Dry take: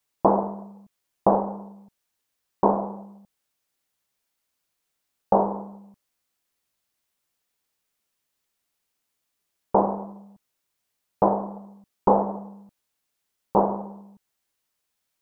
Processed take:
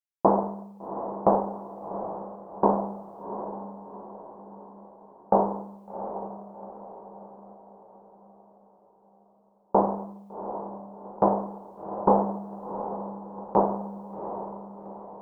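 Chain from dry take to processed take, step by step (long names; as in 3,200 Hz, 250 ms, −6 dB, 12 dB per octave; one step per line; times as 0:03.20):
noise gate with hold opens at −41 dBFS
feedback delay with all-pass diffusion 752 ms, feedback 48%, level −10 dB
level −1.5 dB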